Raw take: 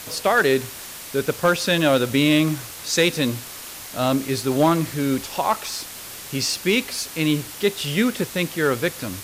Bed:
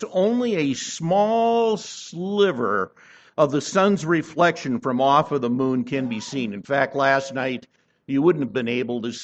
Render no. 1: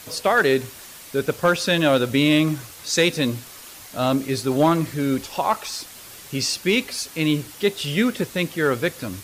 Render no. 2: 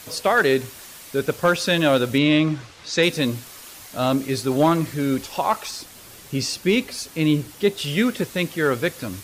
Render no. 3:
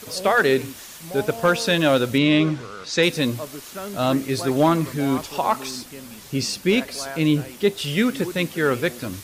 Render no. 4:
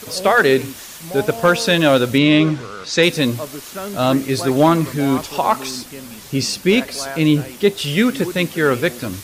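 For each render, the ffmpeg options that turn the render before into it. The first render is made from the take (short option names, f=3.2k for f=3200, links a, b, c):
-af "afftdn=nr=6:nf=-37"
-filter_complex "[0:a]asettb=1/sr,asplit=3[a][b][c];[a]atrim=end=2.184[d];[b]atrim=start=2.18:end=3.03,asetpts=PTS-STARTPTS,afade=t=in:d=0.004:c=qsin,afade=t=out:st=0.846:d=0.004:c=qsin,lowpass=4.6k[e];[c]atrim=start=3.026[f];[d][e]acrossfade=d=0.004:c1=hsin:c2=qsin[g];[g][f]acrossfade=d=0.004:c1=qsin:c2=hsin,asettb=1/sr,asplit=3[h][i][j];[h]atrim=end=5.714[k];[i]atrim=start=5.71:end=7.78,asetpts=PTS-STARTPTS,afade=t=in:d=0.004:c=qsin,afade=t=out:st=2.066:d=0.004:c=qsin,tiltshelf=f=650:g=3[l];[j]atrim=start=7.776[m];[k][l]acrossfade=d=0.004:c1=hsin:c2=qsin[n];[n][m]acrossfade=d=0.004:c1=qsin:c2=hsin"
-filter_complex "[1:a]volume=-15.5dB[a];[0:a][a]amix=inputs=2:normalize=0"
-af "volume=4.5dB"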